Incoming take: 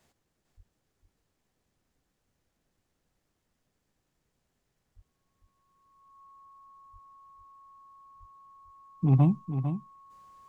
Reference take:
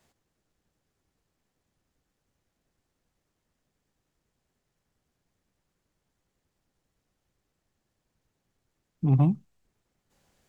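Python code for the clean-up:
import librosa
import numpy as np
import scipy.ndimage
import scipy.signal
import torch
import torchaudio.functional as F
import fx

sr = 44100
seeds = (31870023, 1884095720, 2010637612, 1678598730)

y = fx.notch(x, sr, hz=1100.0, q=30.0)
y = fx.fix_deplosive(y, sr, at_s=(0.56, 4.95, 6.92, 8.19))
y = fx.fix_echo_inverse(y, sr, delay_ms=451, level_db=-9.0)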